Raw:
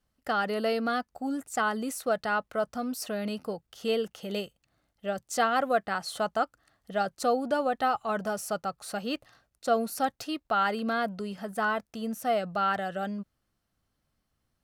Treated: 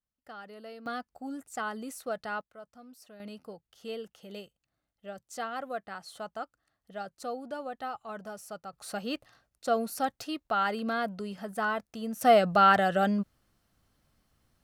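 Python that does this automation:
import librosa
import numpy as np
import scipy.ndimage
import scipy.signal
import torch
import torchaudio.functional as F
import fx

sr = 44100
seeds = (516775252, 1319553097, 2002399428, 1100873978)

y = fx.gain(x, sr, db=fx.steps((0.0, -17.5), (0.86, -7.0), (2.41, -19.0), (3.2, -10.5), (8.73, -2.0), (12.21, 7.0)))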